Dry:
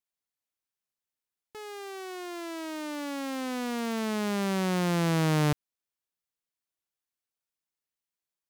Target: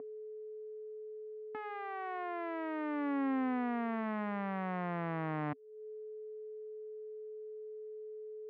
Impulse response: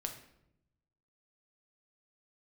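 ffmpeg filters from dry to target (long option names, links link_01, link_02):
-af "aeval=exprs='val(0)+0.00794*sin(2*PI*430*n/s)':channel_layout=same,acompressor=threshold=-43dB:ratio=4,highpass=170,equalizer=frequency=270:width_type=q:width=4:gain=9,equalizer=frequency=390:width_type=q:width=4:gain=-10,equalizer=frequency=720:width_type=q:width=4:gain=6,equalizer=frequency=1100:width_type=q:width=4:gain=5,equalizer=frequency=1900:width_type=q:width=4:gain=4,lowpass=frequency=2200:width=0.5412,lowpass=frequency=2200:width=1.3066,volume=5dB"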